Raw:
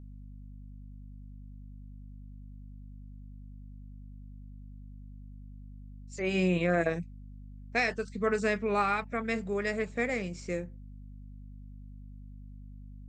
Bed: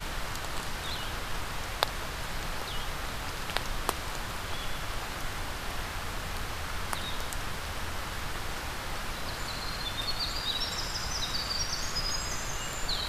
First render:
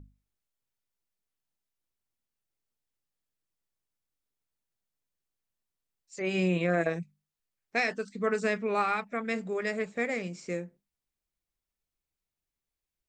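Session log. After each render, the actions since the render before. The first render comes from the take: notches 50/100/150/200/250 Hz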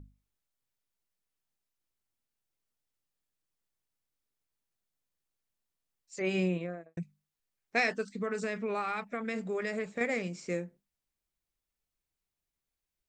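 6.2–6.97 studio fade out; 8.09–10.01 compressor, threshold -29 dBFS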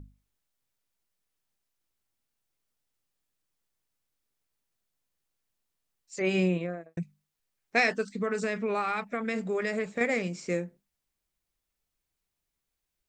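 gain +4 dB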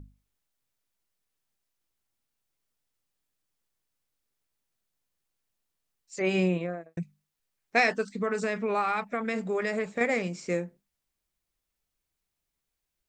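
dynamic EQ 880 Hz, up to +4 dB, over -43 dBFS, Q 1.3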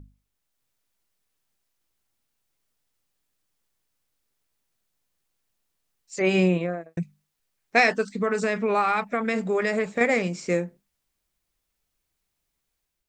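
AGC gain up to 5 dB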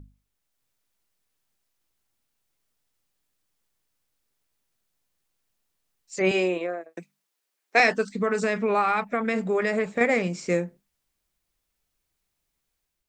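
6.31–7.8 HPF 290 Hz 24 dB/oct; 8.69–10.3 bell 6000 Hz -3.5 dB 1.5 oct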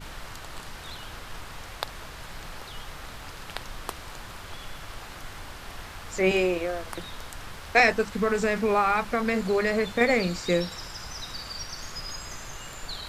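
add bed -5 dB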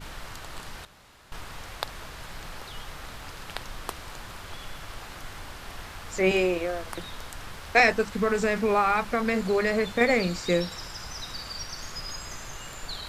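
0.85–1.32 room tone

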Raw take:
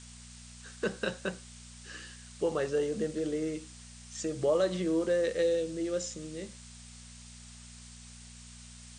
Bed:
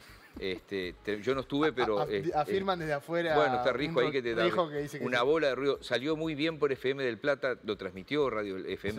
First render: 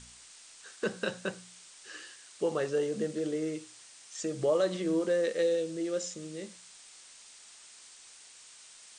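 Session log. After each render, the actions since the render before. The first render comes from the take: de-hum 60 Hz, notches 4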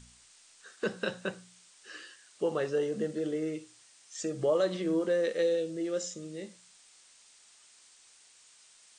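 noise print and reduce 6 dB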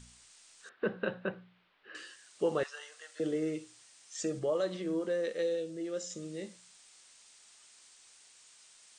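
0.69–1.95 Bessel low-pass 2000 Hz, order 8; 2.63–3.2 HPF 1000 Hz 24 dB/oct; 4.39–6.1 gain -4.5 dB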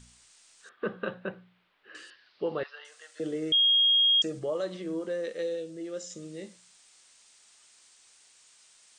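0.69–1.14 small resonant body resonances 1200/3300 Hz, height 13 dB; 2.1–2.85 elliptic low-pass 4700 Hz; 3.52–4.22 bleep 3260 Hz -19 dBFS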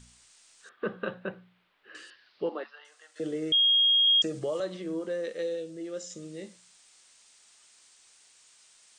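2.49–3.16 rippled Chebyshev high-pass 220 Hz, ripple 6 dB; 4.07–4.6 three-band squash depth 70%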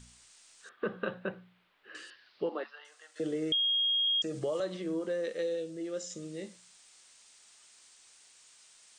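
compressor 5:1, threshold -28 dBFS, peak gain reduction 7.5 dB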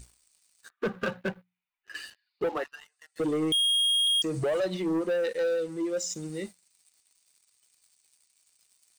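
per-bin expansion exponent 1.5; sample leveller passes 3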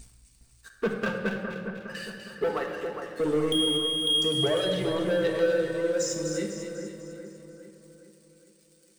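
on a send: split-band echo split 1900 Hz, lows 0.411 s, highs 0.248 s, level -7 dB; on the sum: shoebox room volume 2400 m³, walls mixed, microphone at 1.6 m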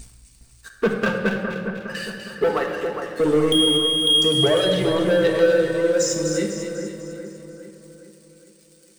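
gain +7.5 dB

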